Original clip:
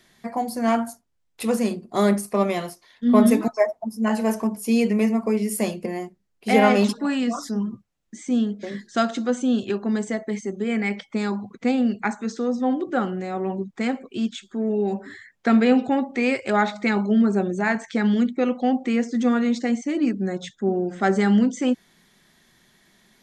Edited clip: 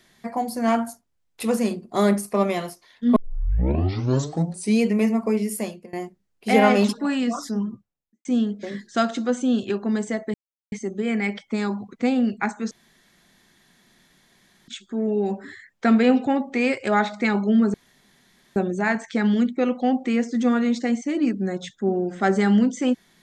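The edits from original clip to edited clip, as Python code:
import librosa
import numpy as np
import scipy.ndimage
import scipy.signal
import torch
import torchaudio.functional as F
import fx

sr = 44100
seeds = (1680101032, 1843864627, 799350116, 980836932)

y = fx.studio_fade_out(x, sr, start_s=7.54, length_s=0.71)
y = fx.edit(y, sr, fx.tape_start(start_s=3.16, length_s=1.66),
    fx.fade_out_to(start_s=5.4, length_s=0.53, floor_db=-23.0),
    fx.insert_silence(at_s=10.34, length_s=0.38),
    fx.room_tone_fill(start_s=12.33, length_s=1.97),
    fx.insert_room_tone(at_s=17.36, length_s=0.82), tone=tone)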